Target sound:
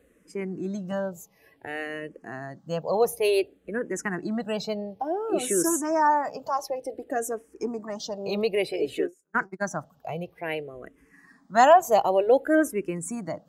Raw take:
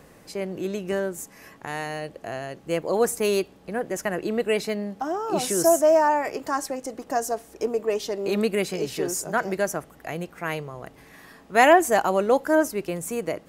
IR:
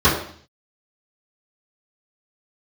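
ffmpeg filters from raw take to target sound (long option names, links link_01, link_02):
-filter_complex "[0:a]asplit=3[link_01][link_02][link_03];[link_01]afade=type=out:start_time=9.01:duration=0.02[link_04];[link_02]agate=range=-30dB:threshold=-24dB:ratio=16:detection=peak,afade=type=in:start_time=9.01:duration=0.02,afade=type=out:start_time=9.7:duration=0.02[link_05];[link_03]afade=type=in:start_time=9.7:duration=0.02[link_06];[link_04][link_05][link_06]amix=inputs=3:normalize=0,afftdn=noise_reduction=13:noise_floor=-39,asplit=2[link_07][link_08];[link_08]afreqshift=-0.56[link_09];[link_07][link_09]amix=inputs=2:normalize=1,volume=1.5dB"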